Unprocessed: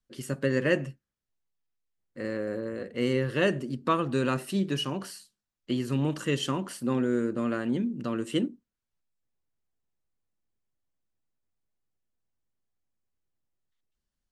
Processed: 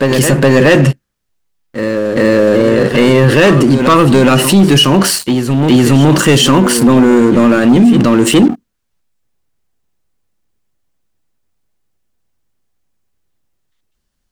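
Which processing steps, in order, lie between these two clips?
waveshaping leveller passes 3; reverse echo 419 ms -14 dB; loudness maximiser +22 dB; trim -1 dB

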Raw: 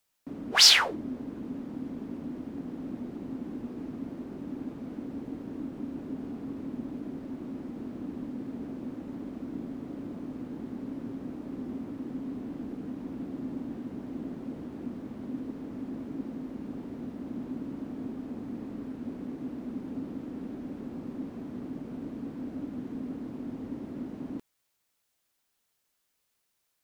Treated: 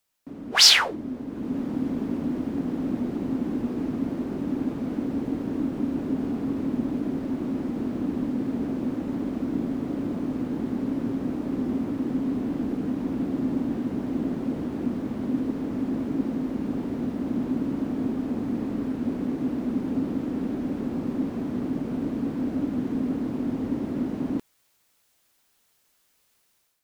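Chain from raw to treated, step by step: level rider gain up to 10 dB

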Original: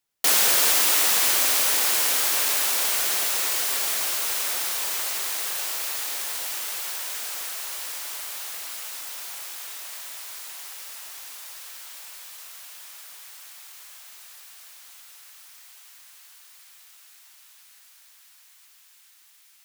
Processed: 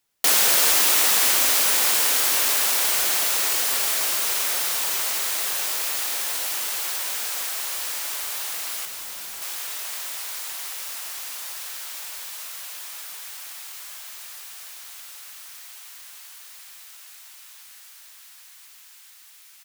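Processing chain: in parallel at 0 dB: compression, threshold -35 dBFS, peak gain reduction 17.5 dB; 8.85–9.42 s: on the sum: hard clipper -34 dBFS, distortion -26 dB; frequency-shifting echo 276 ms, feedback 62%, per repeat -44 Hz, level -12 dB

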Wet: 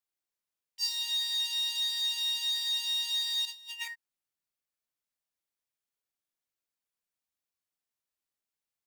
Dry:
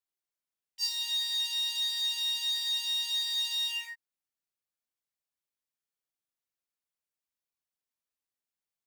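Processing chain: 3.45–3.88 s: compressor with a negative ratio -40 dBFS, ratio -0.5

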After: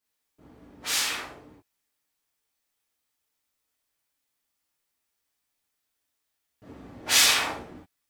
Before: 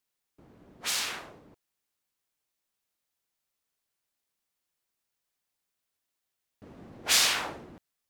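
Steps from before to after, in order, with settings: gated-style reverb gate 90 ms flat, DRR -8 dB; trim -4.5 dB

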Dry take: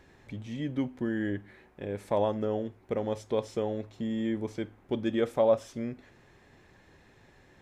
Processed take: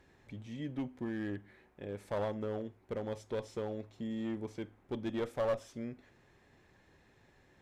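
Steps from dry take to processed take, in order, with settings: one-sided clip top -26 dBFS; trim -6.5 dB

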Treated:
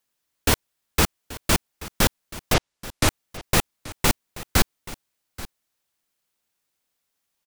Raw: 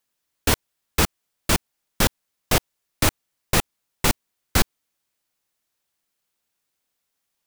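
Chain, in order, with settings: 2.53–3.07 s: low-pass 5.8 kHz -> 12 kHz 12 dB/octave; on a send: delay 831 ms -17.5 dB

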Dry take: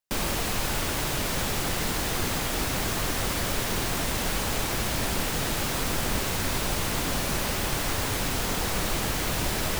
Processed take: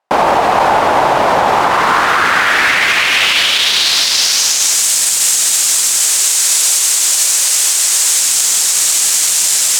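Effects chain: 6.00–8.21 s: high-pass 260 Hz 24 dB/octave; saturation -20.5 dBFS, distortion -19 dB; band-pass sweep 810 Hz -> 7.6 kHz, 1.41–4.85 s; loudness maximiser +31 dB; trim -1 dB

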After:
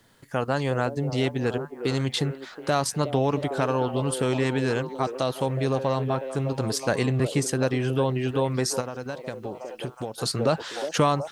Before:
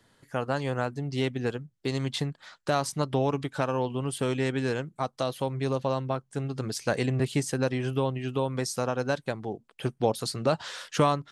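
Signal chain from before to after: in parallel at +2 dB: level held to a coarse grid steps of 18 dB; on the sum: repeats whose band climbs or falls 365 ms, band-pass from 430 Hz, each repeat 0.7 oct, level -6.5 dB; 8.80–10.18 s: compression 10:1, threshold -29 dBFS, peak gain reduction 13 dB; bit crusher 11-bit

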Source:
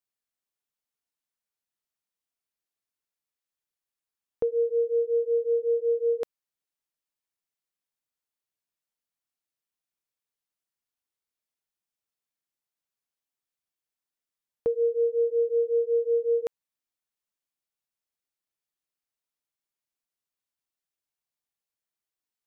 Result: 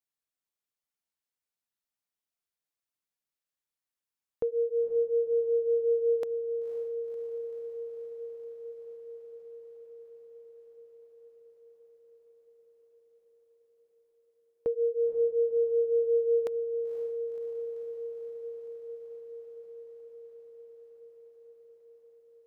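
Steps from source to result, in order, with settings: echo that smears into a reverb 523 ms, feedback 79%, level -10 dB; trim -3.5 dB

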